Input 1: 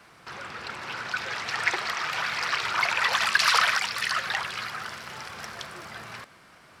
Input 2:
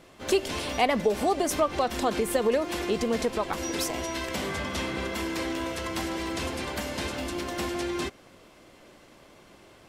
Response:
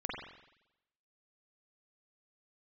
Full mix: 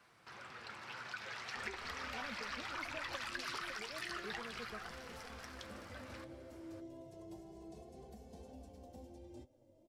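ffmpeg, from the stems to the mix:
-filter_complex "[0:a]acompressor=threshold=0.0447:ratio=5,volume=0.355[s0];[1:a]firequalizer=gain_entry='entry(700,0);entry(1200,-24);entry(5900,-12)':delay=0.05:min_phase=1,acrossover=split=170|370[s1][s2][s3];[s1]acompressor=threshold=0.00891:ratio=4[s4];[s2]acompressor=threshold=0.00282:ratio=4[s5];[s3]acompressor=threshold=0.00891:ratio=4[s6];[s4][s5][s6]amix=inputs=3:normalize=0,asplit=2[s7][s8];[s8]adelay=2.3,afreqshift=0.3[s9];[s7][s9]amix=inputs=2:normalize=1,adelay=1350,volume=0.501[s10];[s0][s10]amix=inputs=2:normalize=0,flanger=delay=7.7:depth=1.7:regen=65:speed=2:shape=sinusoidal"

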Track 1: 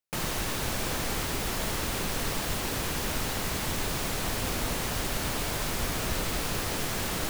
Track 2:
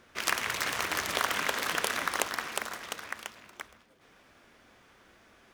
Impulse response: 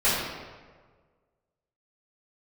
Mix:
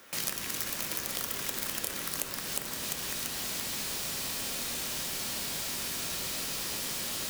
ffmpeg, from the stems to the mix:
-filter_complex "[0:a]tiltshelf=f=970:g=-4,volume=0.75,asplit=2[s0][s1];[s1]volume=0.211[s2];[1:a]aemphasis=mode=production:type=50fm,volume=1.33,asplit=2[s3][s4];[s4]volume=0.106[s5];[2:a]atrim=start_sample=2205[s6];[s2][s5]amix=inputs=2:normalize=0[s7];[s7][s6]afir=irnorm=-1:irlink=0[s8];[s0][s3][s8]amix=inputs=3:normalize=0,highpass=f=250:p=1,acrossover=split=350|3100[s9][s10][s11];[s9]acompressor=threshold=0.00562:ratio=4[s12];[s10]acompressor=threshold=0.00501:ratio=4[s13];[s11]acompressor=threshold=0.0224:ratio=4[s14];[s12][s13][s14]amix=inputs=3:normalize=0"

